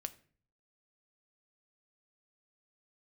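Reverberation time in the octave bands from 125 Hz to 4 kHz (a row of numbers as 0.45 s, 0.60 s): 0.80 s, 0.65 s, 0.50 s, 0.40 s, 0.45 s, 0.35 s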